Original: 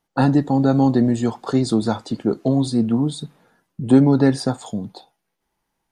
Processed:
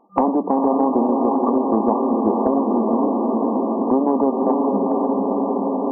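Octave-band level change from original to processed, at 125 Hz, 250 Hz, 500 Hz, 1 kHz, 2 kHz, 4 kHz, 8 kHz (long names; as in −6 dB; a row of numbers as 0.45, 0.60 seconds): below −15 dB, 0.0 dB, +5.0 dB, +8.5 dB, below −15 dB, below −35 dB, below −40 dB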